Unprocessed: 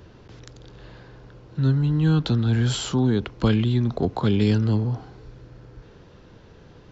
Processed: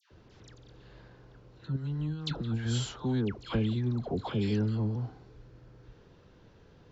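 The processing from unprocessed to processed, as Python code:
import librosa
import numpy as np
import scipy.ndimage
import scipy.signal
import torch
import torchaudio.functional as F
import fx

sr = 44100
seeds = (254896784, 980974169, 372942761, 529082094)

y = fx.over_compress(x, sr, threshold_db=-23.0, ratio=-0.5, at=(1.65, 2.55))
y = fx.dispersion(y, sr, late='lows', ms=113.0, hz=1300.0)
y = y * librosa.db_to_amplitude(-9.0)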